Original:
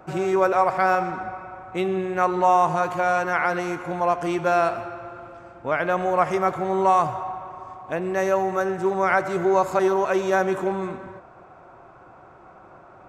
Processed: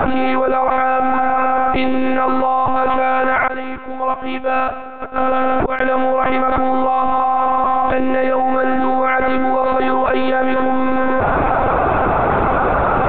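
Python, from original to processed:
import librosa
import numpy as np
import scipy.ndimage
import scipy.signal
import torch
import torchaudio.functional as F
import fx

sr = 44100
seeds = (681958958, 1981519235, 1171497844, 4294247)

y = fx.gate_flip(x, sr, shuts_db=-28.0, range_db=-37, at=(3.47, 5.81))
y = fx.lpc_monotone(y, sr, seeds[0], pitch_hz=260.0, order=16)
y = fx.env_flatten(y, sr, amount_pct=100)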